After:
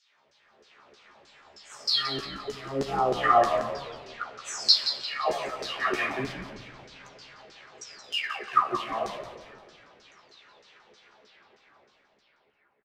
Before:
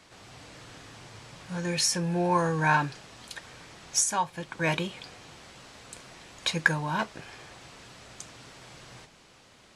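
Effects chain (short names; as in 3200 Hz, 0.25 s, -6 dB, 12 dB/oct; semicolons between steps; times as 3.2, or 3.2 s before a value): spectral delay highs early, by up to 0.5 s; Doppler pass-by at 4.1, 8 m/s, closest 9 m; AGC gain up to 8 dB; in parallel at -7 dB: bit-crush 5-bit; on the sum: varispeed -24%; LFO band-pass saw down 3.2 Hz 390–5700 Hz; doubler 14 ms -5 dB; frequency-shifting echo 0.174 s, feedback 40%, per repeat -81 Hz, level -10 dB; on a send at -10 dB: reverb RT60 1.6 s, pre-delay 5 ms; on the sum: gain +2.5 dB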